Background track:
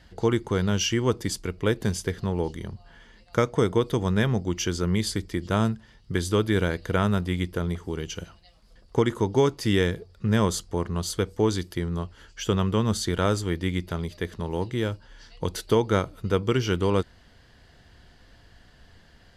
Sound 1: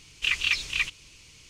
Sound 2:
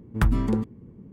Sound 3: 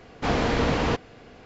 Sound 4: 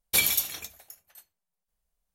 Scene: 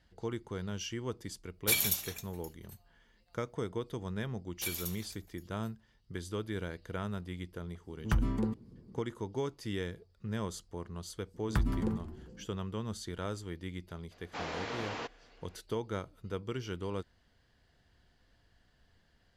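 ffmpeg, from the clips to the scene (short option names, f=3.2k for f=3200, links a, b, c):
-filter_complex "[4:a]asplit=2[a][b];[2:a]asplit=2[c][d];[0:a]volume=-14.5dB[e];[d]asplit=5[f][g][h][i][j];[g]adelay=176,afreqshift=-140,volume=-13dB[k];[h]adelay=352,afreqshift=-280,volume=-19.9dB[l];[i]adelay=528,afreqshift=-420,volume=-26.9dB[m];[j]adelay=704,afreqshift=-560,volume=-33.8dB[n];[f][k][l][m][n]amix=inputs=5:normalize=0[o];[3:a]highpass=f=660:p=1[p];[a]atrim=end=2.14,asetpts=PTS-STARTPTS,volume=-5.5dB,afade=t=in:d=0.004:c=hsin,afade=t=out:st=2.136:d=0.004:c=hsin,adelay=1540[q];[b]atrim=end=2.14,asetpts=PTS-STARTPTS,volume=-15dB,afade=t=in:d=0.004:c=hsin,afade=t=out:st=2.136:d=0.004:c=hsin,adelay=4480[r];[c]atrim=end=1.12,asetpts=PTS-STARTPTS,volume=-8dB,afade=t=in:d=0.004:c=hsin,afade=t=out:st=1.116:d=0.004:c=hsin,adelay=7900[s];[o]atrim=end=1.12,asetpts=PTS-STARTPTS,volume=-9dB,afade=t=in:d=0.004:c=hsin,afade=t=out:st=1.116:d=0.004:c=hsin,adelay=11340[t];[p]atrim=end=1.45,asetpts=PTS-STARTPTS,volume=-11dB,afade=t=in:d=0.004:c=hsin,afade=t=out:st=1.446:d=0.004:c=hsin,adelay=14110[u];[e][q][r][s][t][u]amix=inputs=6:normalize=0"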